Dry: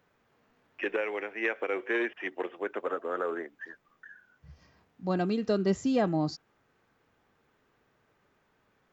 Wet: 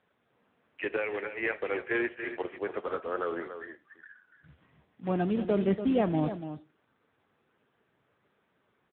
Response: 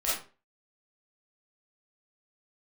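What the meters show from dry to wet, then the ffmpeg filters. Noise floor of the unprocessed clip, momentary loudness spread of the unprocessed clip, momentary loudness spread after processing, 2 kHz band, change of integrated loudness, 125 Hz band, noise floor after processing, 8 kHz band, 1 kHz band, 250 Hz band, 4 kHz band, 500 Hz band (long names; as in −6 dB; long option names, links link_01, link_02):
−71 dBFS, 12 LU, 15 LU, −0.5 dB, 0.0 dB, +1.0 dB, −74 dBFS, can't be measured, −0.5 dB, +0.5 dB, −4.5 dB, 0.0 dB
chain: -filter_complex "[0:a]aecho=1:1:287:0.316,acrusher=bits=3:mode=log:mix=0:aa=0.000001,asplit=2[link_01][link_02];[1:a]atrim=start_sample=2205[link_03];[link_02][link_03]afir=irnorm=-1:irlink=0,volume=-24.5dB[link_04];[link_01][link_04]amix=inputs=2:normalize=0" -ar 8000 -c:a libopencore_amrnb -b:a 6700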